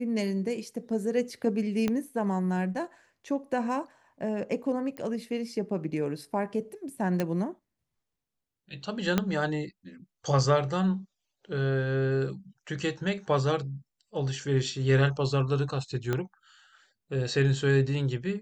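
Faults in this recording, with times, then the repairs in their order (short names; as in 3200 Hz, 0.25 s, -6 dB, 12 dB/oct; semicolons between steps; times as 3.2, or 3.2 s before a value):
1.88 pop -15 dBFS
4.97 pop -25 dBFS
7.2 pop -15 dBFS
9.18 pop -10 dBFS
16.13 pop -15 dBFS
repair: de-click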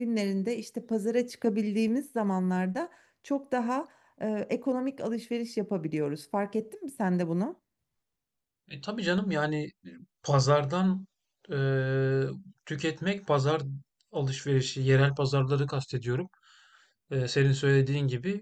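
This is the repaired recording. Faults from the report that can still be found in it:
1.88 pop
4.97 pop
7.2 pop
9.18 pop
16.13 pop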